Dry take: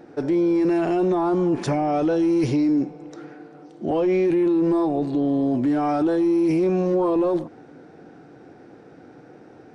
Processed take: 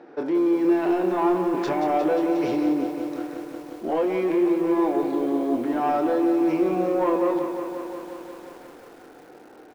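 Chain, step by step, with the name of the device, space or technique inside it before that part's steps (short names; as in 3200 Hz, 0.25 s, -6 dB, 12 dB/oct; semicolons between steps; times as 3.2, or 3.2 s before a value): intercom (BPF 320–3900 Hz; bell 1000 Hz +4 dB 0.4 oct; soft clip -17 dBFS, distortion -22 dB; doubler 26 ms -7.5 dB); lo-fi delay 0.178 s, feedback 80%, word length 8-bit, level -8.5 dB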